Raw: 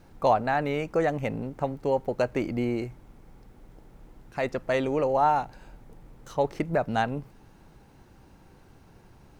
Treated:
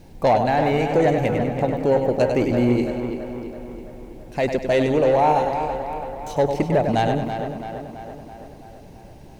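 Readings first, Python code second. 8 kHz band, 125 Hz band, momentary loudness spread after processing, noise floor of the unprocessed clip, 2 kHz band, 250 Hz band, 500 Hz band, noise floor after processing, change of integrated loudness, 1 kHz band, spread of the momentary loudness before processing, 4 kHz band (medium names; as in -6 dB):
no reading, +9.5 dB, 18 LU, -55 dBFS, +4.5 dB, +9.0 dB, +8.0 dB, -43 dBFS, +6.5 dB, +5.5 dB, 10 LU, +7.5 dB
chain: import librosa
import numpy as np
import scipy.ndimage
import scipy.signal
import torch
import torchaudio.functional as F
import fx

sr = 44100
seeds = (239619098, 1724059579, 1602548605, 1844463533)

p1 = fx.peak_eq(x, sr, hz=1300.0, db=-14.0, octaves=0.61)
p2 = fx.echo_feedback(p1, sr, ms=99, feedback_pct=42, wet_db=-8)
p3 = 10.0 ** (-18.0 / 20.0) * np.tanh(p2 / 10.0 ** (-18.0 / 20.0))
p4 = p3 + fx.echo_tape(p3, sr, ms=332, feedback_pct=65, wet_db=-6.0, lp_hz=3300.0, drive_db=21.0, wow_cents=13, dry=0)
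y = p4 * 10.0 ** (8.5 / 20.0)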